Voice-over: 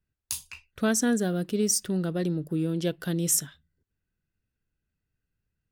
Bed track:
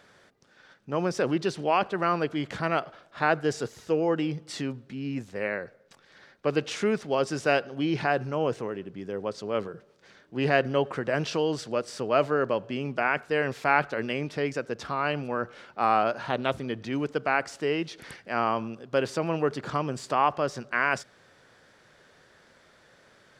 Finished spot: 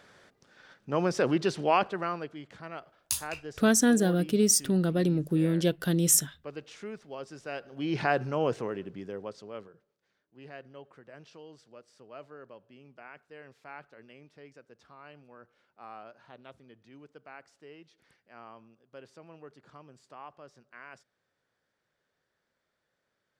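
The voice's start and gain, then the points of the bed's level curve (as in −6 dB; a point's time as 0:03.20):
2.80 s, +2.0 dB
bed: 0:01.75 0 dB
0:02.45 −15 dB
0:07.51 −15 dB
0:07.99 −1 dB
0:08.91 −1 dB
0:10.08 −23 dB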